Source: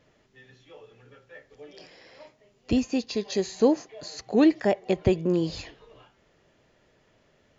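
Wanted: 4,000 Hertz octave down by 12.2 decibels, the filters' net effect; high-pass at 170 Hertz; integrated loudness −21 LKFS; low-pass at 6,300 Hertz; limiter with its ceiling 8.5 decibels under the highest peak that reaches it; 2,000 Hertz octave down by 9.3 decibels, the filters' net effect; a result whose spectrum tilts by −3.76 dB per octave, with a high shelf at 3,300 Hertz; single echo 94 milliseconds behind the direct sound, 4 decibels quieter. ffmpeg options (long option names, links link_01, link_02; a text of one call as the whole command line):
ffmpeg -i in.wav -af "highpass=170,lowpass=6300,equalizer=frequency=2000:width_type=o:gain=-7,highshelf=frequency=3300:gain=-8,equalizer=frequency=4000:width_type=o:gain=-6.5,alimiter=limit=-18dB:level=0:latency=1,aecho=1:1:94:0.631,volume=7.5dB" out.wav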